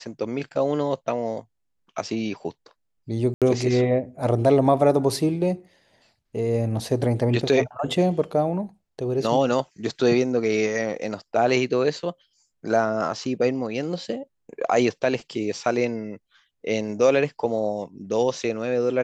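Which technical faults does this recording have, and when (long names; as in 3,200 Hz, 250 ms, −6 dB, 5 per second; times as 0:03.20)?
0:03.34–0:03.42: drop-out 77 ms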